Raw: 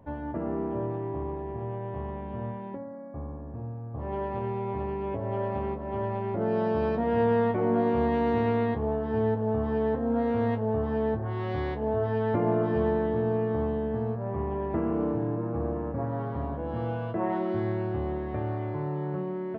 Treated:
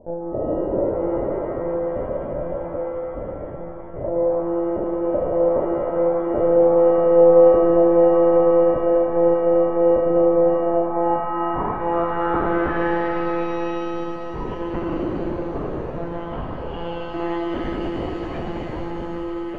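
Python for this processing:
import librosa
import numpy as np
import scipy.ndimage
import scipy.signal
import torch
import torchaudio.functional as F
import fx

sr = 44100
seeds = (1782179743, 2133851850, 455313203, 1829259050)

y = fx.lpc_monotone(x, sr, seeds[0], pitch_hz=170.0, order=16)
y = fx.filter_sweep_lowpass(y, sr, from_hz=570.0, to_hz=3000.0, start_s=10.45, end_s=13.97, q=6.1)
y = fx.rev_shimmer(y, sr, seeds[1], rt60_s=2.9, semitones=7, shimmer_db=-8, drr_db=3.5)
y = y * librosa.db_to_amplitude(1.5)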